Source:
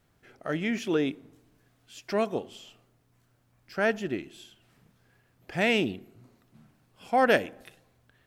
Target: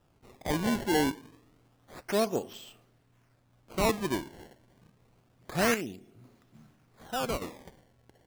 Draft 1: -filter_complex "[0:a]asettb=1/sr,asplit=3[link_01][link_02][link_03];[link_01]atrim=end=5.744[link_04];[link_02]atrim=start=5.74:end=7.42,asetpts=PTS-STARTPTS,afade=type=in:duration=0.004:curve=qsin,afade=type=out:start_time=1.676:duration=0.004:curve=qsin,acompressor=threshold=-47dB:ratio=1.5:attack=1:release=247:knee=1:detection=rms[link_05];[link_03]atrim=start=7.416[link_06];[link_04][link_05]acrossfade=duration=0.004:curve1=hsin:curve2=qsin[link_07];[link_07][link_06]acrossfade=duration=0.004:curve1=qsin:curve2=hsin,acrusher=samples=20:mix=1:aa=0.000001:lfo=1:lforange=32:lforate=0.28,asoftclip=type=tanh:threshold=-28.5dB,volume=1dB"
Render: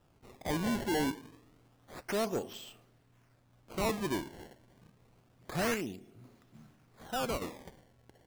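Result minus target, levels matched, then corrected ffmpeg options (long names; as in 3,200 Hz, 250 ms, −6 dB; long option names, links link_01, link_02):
soft clipping: distortion +12 dB
-filter_complex "[0:a]asettb=1/sr,asplit=3[link_01][link_02][link_03];[link_01]atrim=end=5.744[link_04];[link_02]atrim=start=5.74:end=7.42,asetpts=PTS-STARTPTS,afade=type=in:duration=0.004:curve=qsin,afade=type=out:start_time=1.676:duration=0.004:curve=qsin,acompressor=threshold=-47dB:ratio=1.5:attack=1:release=247:knee=1:detection=rms[link_05];[link_03]atrim=start=7.416[link_06];[link_04][link_05]acrossfade=duration=0.004:curve1=hsin:curve2=qsin[link_07];[link_07][link_06]acrossfade=duration=0.004:curve1=qsin:curve2=hsin,acrusher=samples=20:mix=1:aa=0.000001:lfo=1:lforange=32:lforate=0.28,asoftclip=type=tanh:threshold=-17.5dB,volume=1dB"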